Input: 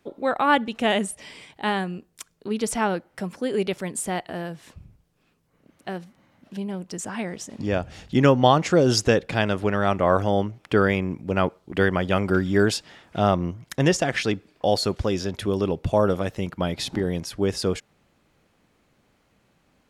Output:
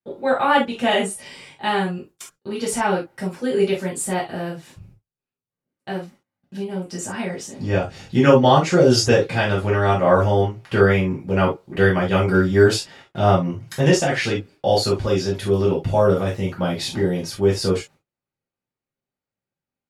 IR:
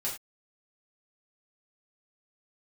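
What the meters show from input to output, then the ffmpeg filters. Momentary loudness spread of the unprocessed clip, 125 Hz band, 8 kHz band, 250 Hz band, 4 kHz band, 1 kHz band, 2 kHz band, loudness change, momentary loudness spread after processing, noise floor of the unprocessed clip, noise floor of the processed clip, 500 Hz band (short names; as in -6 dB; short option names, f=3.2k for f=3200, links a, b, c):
14 LU, +5.0 dB, +3.0 dB, +2.5 dB, +3.0 dB, +3.0 dB, +3.5 dB, +4.0 dB, 15 LU, -66 dBFS, under -85 dBFS, +5.0 dB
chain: -filter_complex "[0:a]agate=range=-29dB:threshold=-48dB:ratio=16:detection=peak[a];[1:a]atrim=start_sample=2205,atrim=end_sample=3528[b];[a][b]afir=irnorm=-1:irlink=0"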